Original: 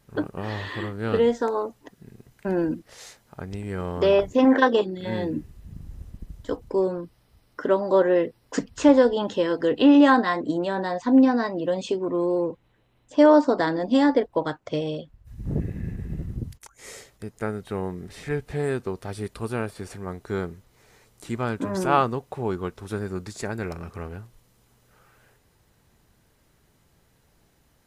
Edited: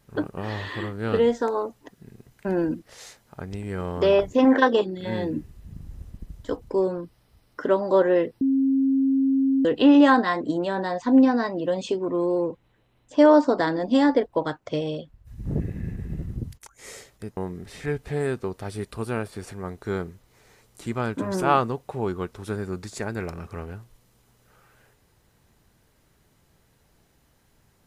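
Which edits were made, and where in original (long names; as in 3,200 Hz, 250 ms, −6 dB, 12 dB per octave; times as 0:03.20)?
0:08.41–0:09.65: beep over 269 Hz −17.5 dBFS
0:17.37–0:17.80: remove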